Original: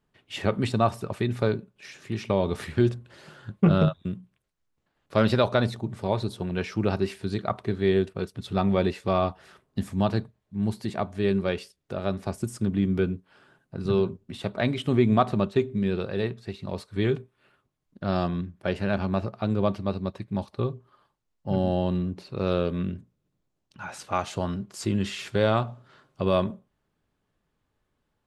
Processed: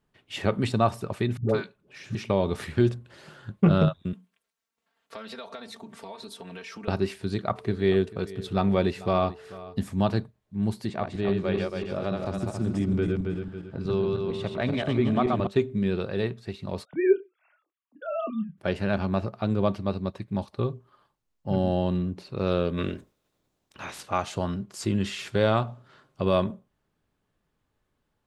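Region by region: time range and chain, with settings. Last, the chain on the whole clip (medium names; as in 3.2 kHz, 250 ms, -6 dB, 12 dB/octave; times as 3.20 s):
1.37–2.15 s: treble shelf 5.5 kHz -5 dB + phase dispersion highs, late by 122 ms, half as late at 480 Hz
4.13–6.88 s: high-pass 730 Hz 6 dB/octave + comb 4.4 ms, depth 94% + compression, threshold -37 dBFS
7.55–9.80 s: whistle 440 Hz -46 dBFS + delay 441 ms -18.5 dB
10.88–15.47 s: backward echo that repeats 137 ms, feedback 57%, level -2.5 dB + compression 1.5:1, threshold -26 dBFS + distance through air 66 m
16.85–18.58 s: formants replaced by sine waves + dynamic bell 890 Hz, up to +4 dB, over -40 dBFS, Q 1.7 + doubling 27 ms -8.5 dB
22.77–24.00 s: spectral peaks clipped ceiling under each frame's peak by 19 dB + peaking EQ 3.7 kHz +3 dB 0.23 oct
whole clip: none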